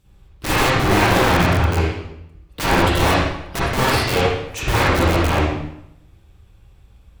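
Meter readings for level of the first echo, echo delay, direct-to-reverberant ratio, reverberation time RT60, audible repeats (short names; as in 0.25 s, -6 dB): none, none, -9.0 dB, 0.80 s, none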